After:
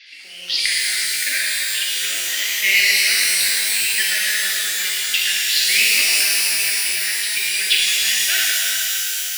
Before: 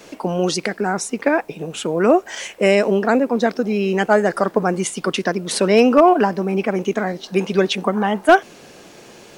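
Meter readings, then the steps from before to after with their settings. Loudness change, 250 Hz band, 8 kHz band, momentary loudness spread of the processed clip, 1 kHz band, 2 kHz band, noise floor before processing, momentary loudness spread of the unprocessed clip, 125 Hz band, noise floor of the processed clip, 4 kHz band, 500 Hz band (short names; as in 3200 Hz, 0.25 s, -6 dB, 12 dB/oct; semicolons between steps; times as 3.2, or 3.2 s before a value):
+2.5 dB, under -30 dB, +14.0 dB, 6 LU, -20.0 dB, +6.5 dB, -44 dBFS, 8 LU, under -25 dB, -31 dBFS, +14.0 dB, -27.0 dB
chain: elliptic band-pass 1900–4900 Hz, stop band 40 dB; added harmonics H 8 -42 dB, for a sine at -7.5 dBFS; shimmer reverb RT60 3.7 s, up +12 st, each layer -2 dB, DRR -7 dB; gain +4.5 dB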